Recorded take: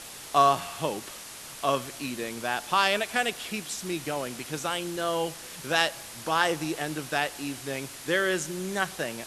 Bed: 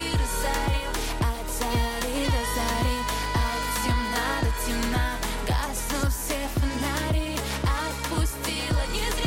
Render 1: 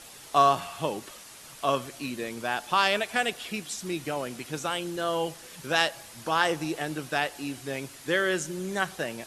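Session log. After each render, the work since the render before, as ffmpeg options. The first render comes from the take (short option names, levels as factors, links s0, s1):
-af "afftdn=nr=6:nf=-43"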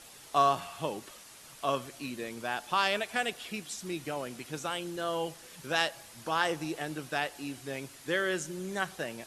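-af "volume=0.596"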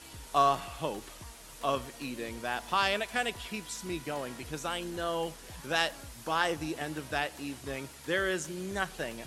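-filter_complex "[1:a]volume=0.0631[s0];[0:a][s0]amix=inputs=2:normalize=0"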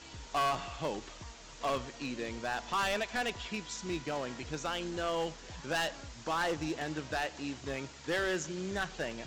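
-af "aresample=16000,acrusher=bits=4:mode=log:mix=0:aa=0.000001,aresample=44100,volume=22.4,asoftclip=hard,volume=0.0447"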